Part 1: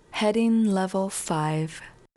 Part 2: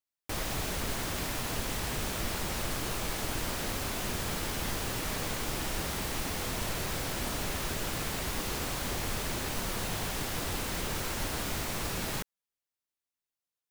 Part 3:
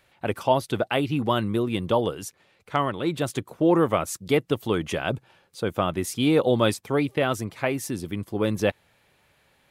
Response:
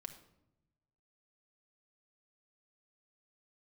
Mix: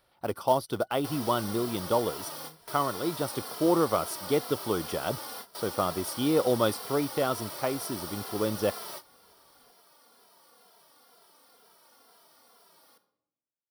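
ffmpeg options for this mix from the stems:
-filter_complex "[0:a]acompressor=threshold=-33dB:ratio=6,adelay=900,volume=-19.5dB[a];[1:a]highpass=500,asplit=2[b][c];[c]adelay=2.6,afreqshift=-2.1[d];[b][d]amix=inputs=2:normalize=1,adelay=750,volume=0.5dB,asplit=2[e][f];[f]volume=-16.5dB[g];[2:a]equalizer=f=120:t=o:w=2.7:g=-5.5,acrusher=bits=4:mode=log:mix=0:aa=0.000001,volume=-2.5dB,asplit=2[h][i];[i]apad=whole_len=637421[j];[e][j]sidechaingate=range=-33dB:threshold=-60dB:ratio=16:detection=peak[k];[3:a]atrim=start_sample=2205[l];[g][l]afir=irnorm=-1:irlink=0[m];[a][k][h][m]amix=inputs=4:normalize=0,superequalizer=11b=0.398:12b=0.316:13b=0.631:15b=0.251"

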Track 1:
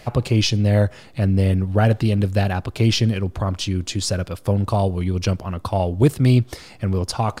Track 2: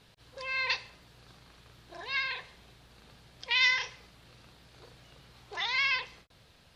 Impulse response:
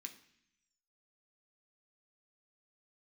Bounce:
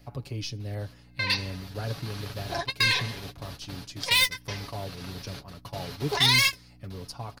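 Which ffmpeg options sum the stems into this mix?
-filter_complex "[0:a]aeval=exprs='val(0)+0.02*(sin(2*PI*60*n/s)+sin(2*PI*2*60*n/s)/2+sin(2*PI*3*60*n/s)/3+sin(2*PI*4*60*n/s)/4+sin(2*PI*5*60*n/s)/5)':c=same,volume=-18dB,asplit=2[a][b];[1:a]dynaudnorm=f=240:g=9:m=15.5dB,asoftclip=type=tanh:threshold=-15dB,adelay=600,volume=1.5dB[c];[b]apad=whole_len=324260[d];[c][d]sidechaingate=range=-43dB:threshold=-41dB:ratio=16:detection=peak[e];[a][e]amix=inputs=2:normalize=0,aecho=1:1:7.1:0.52,acrossover=split=370|3000[f][g][h];[g]acompressor=threshold=-31dB:ratio=2[i];[f][i][h]amix=inputs=3:normalize=0,aexciter=amount=1:drive=7.7:freq=4.4k"

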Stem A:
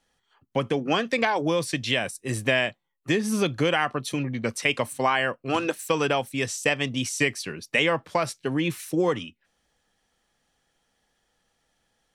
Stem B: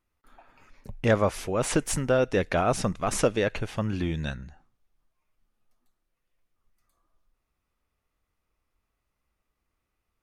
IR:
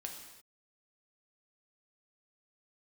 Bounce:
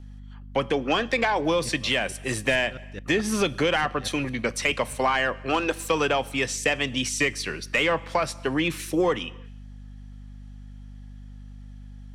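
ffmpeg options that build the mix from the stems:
-filter_complex "[0:a]asplit=2[a][b];[b]highpass=f=720:p=1,volume=13dB,asoftclip=type=tanh:threshold=-6.5dB[c];[a][c]amix=inputs=2:normalize=0,lowpass=f=4.7k:p=1,volume=-6dB,aeval=exprs='val(0)+0.01*(sin(2*PI*50*n/s)+sin(2*PI*2*50*n/s)/2+sin(2*PI*3*50*n/s)/3+sin(2*PI*4*50*n/s)/4+sin(2*PI*5*50*n/s)/5)':c=same,volume=-1.5dB,asplit=2[d][e];[e]volume=-13.5dB[f];[1:a]equalizer=f=600:w=0.83:g=-9.5,asoftclip=type=tanh:threshold=-20.5dB,aeval=exprs='val(0)*pow(10,-38*if(lt(mod(-4.6*n/s,1),2*abs(-4.6)/1000),1-mod(-4.6*n/s,1)/(2*abs(-4.6)/1000),(mod(-4.6*n/s,1)-2*abs(-4.6)/1000)/(1-2*abs(-4.6)/1000))/20)':c=same,adelay=600,volume=-5dB,asplit=2[g][h];[h]volume=-19.5dB[i];[2:a]atrim=start_sample=2205[j];[f][i]amix=inputs=2:normalize=0[k];[k][j]afir=irnorm=-1:irlink=0[l];[d][g][l]amix=inputs=3:normalize=0,acrossover=split=430[m][n];[n]acompressor=threshold=-28dB:ratio=1.5[o];[m][o]amix=inputs=2:normalize=0"

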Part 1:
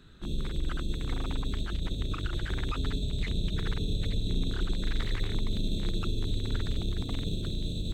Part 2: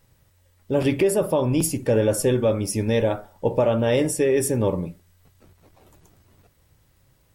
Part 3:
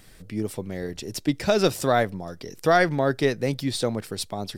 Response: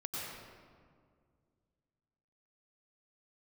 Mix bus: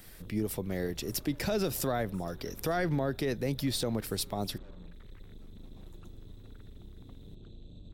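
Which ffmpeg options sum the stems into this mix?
-filter_complex "[0:a]acompressor=threshold=-28dB:ratio=6,aeval=exprs='clip(val(0),-1,0.02)':c=same,lowpass=f=1.5k:p=1,volume=-13.5dB[a];[1:a]acompressor=threshold=-25dB:ratio=6,asoftclip=type=tanh:threshold=-38dB,volume=-8.5dB[b];[2:a]acrossover=split=410[c][d];[d]acompressor=threshold=-32dB:ratio=1.5[e];[c][e]amix=inputs=2:normalize=0,alimiter=limit=-20dB:level=0:latency=1:release=72,aexciter=amount=3.3:drive=4.1:freq=11k,volume=-1.5dB,asplit=2[f][g];[g]apad=whole_len=324016[h];[b][h]sidechaincompress=threshold=-37dB:ratio=8:attack=16:release=1260[i];[a][i][f]amix=inputs=3:normalize=0"

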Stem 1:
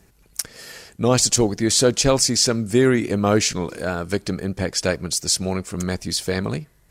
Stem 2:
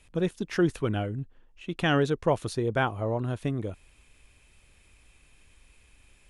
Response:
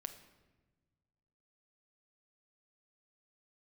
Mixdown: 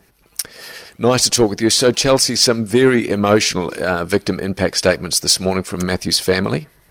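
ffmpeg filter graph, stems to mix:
-filter_complex "[0:a]dynaudnorm=f=530:g=3:m=6.5dB,acrossover=split=1600[a][b];[a]aeval=exprs='val(0)*(1-0.5/2+0.5/2*cos(2*PI*8.4*n/s))':c=same[c];[b]aeval=exprs='val(0)*(1-0.5/2-0.5/2*cos(2*PI*8.4*n/s))':c=same[d];[c][d]amix=inputs=2:normalize=0,equalizer=f=7.3k:w=3.3:g=-10,volume=0dB[e];[1:a]acompressor=threshold=-33dB:ratio=6,bandpass=f=1.7k:t=q:w=2.8:csg=0,aeval=exprs='val(0)*sgn(sin(2*PI*840*n/s))':c=same,adelay=100,volume=-13.5dB[f];[e][f]amix=inputs=2:normalize=0,lowshelf=f=200:g=-9,acontrast=90"

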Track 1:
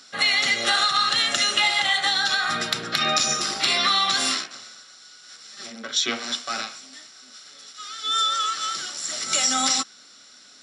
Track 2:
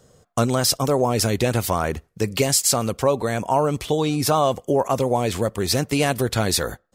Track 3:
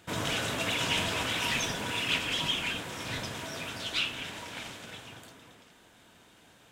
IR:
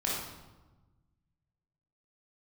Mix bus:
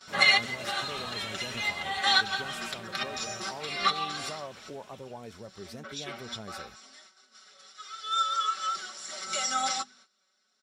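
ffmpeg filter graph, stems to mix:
-filter_complex "[0:a]equalizer=f=870:w=0.38:g=7.5,bandreject=f=50:t=h:w=6,bandreject=f=100:t=h:w=6,bandreject=f=150:t=h:w=6,bandreject=f=200:t=h:w=6,bandreject=f=250:t=h:w=6,aecho=1:1:5.3:0.71,volume=-1.5dB,afade=t=out:st=6.25:d=0.73:silence=0.398107[a];[1:a]highshelf=f=4.3k:g=-8.5,volume=-18dB,asplit=2[b][c];[2:a]volume=-8dB[d];[c]apad=whole_len=468867[e];[a][e]sidechaincompress=threshold=-51dB:ratio=6:attack=6.3:release=182[f];[f][b][d]amix=inputs=3:normalize=0,agate=range=-15dB:threshold=-51dB:ratio=16:detection=peak,flanger=delay=4.3:depth=1.1:regen=60:speed=1.9:shape=triangular"

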